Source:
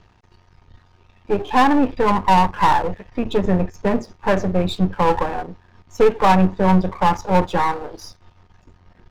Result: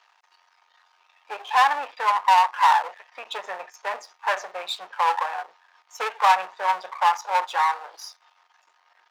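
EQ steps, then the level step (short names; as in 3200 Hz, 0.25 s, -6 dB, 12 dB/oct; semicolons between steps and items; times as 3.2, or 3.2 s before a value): HPF 800 Hz 24 dB/oct; 0.0 dB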